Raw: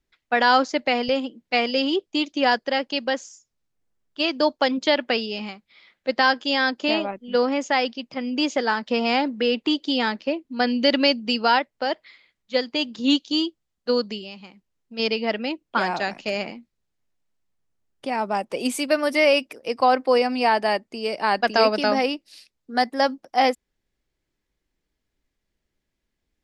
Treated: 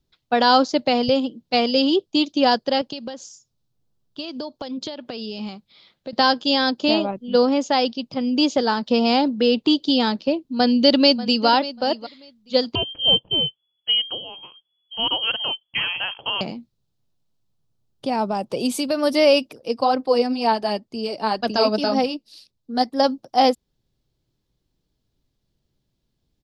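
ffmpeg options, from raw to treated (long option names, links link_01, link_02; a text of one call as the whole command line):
ffmpeg -i in.wav -filter_complex "[0:a]asettb=1/sr,asplit=3[link_01][link_02][link_03];[link_01]atrim=end=2.814[link_04];[link_02]atrim=start=2.81:end=6.13,asetpts=PTS-STARTPTS,afade=type=in:duration=0.004:curve=qsin,afade=type=out:start_time=3.316:duration=0.004:curve=qsin,acompressor=threshold=-31dB:ratio=8:attack=3.2:release=140:knee=1:detection=peak[link_05];[link_03]atrim=start=6.126[link_06];[link_04][link_05]acrossfade=duration=0.004:curve1=hsin:curve2=qsin[link_07];[link_07][link_06]acrossfade=duration=0.004:curve1=qsin:curve2=hsin,asplit=2[link_08][link_09];[link_09]afade=type=in:start_time=10.41:duration=0.01,afade=type=out:start_time=11.47:duration=0.01,aecho=0:1:590|1180:0.16788|0.0251821[link_10];[link_08][link_10]amix=inputs=2:normalize=0,asettb=1/sr,asplit=3[link_11][link_12][link_13];[link_11]atrim=end=12.754[link_14];[link_12]atrim=start=12.75:end=16.41,asetpts=PTS-STARTPTS,afade=type=in:duration=0.004:curve=qsin,afade=type=out:start_time=3.656:duration=0.004:curve=qsin,lowpass=frequency=2900:width_type=q:width=0.5098,lowpass=frequency=2900:width_type=q:width=0.6013,lowpass=frequency=2900:width_type=q:width=0.9,lowpass=frequency=2900:width_type=q:width=2.563,afreqshift=-3400[link_15];[link_13]atrim=start=16.406[link_16];[link_14][link_15]acrossfade=duration=0.004:curve1=hsin:curve2=qsin[link_17];[link_17][link_16]acrossfade=duration=0.004:curve1=qsin:curve2=hsin,asplit=3[link_18][link_19][link_20];[link_18]afade=type=out:start_time=18.26:duration=0.02[link_21];[link_19]acompressor=threshold=-22dB:ratio=3:attack=3.2:release=140:knee=1:detection=peak,afade=type=in:start_time=18.26:duration=0.02,afade=type=out:start_time=18.96:duration=0.02[link_22];[link_20]afade=type=in:start_time=18.96:duration=0.02[link_23];[link_21][link_22][link_23]amix=inputs=3:normalize=0,asplit=3[link_24][link_25][link_26];[link_24]afade=type=out:start_time=19.5:duration=0.02[link_27];[link_25]flanger=delay=0:depth=4.6:regen=39:speed=2:shape=sinusoidal,afade=type=in:start_time=19.5:duration=0.02,afade=type=out:start_time=23.03:duration=0.02[link_28];[link_26]afade=type=in:start_time=23.03:duration=0.02[link_29];[link_27][link_28][link_29]amix=inputs=3:normalize=0,equalizer=frequency=125:width_type=o:width=1:gain=11,equalizer=frequency=2000:width_type=o:width=1:gain=-12,equalizer=frequency=4000:width_type=o:width=1:gain=6,equalizer=frequency=8000:width_type=o:width=1:gain=-4,volume=3.5dB" out.wav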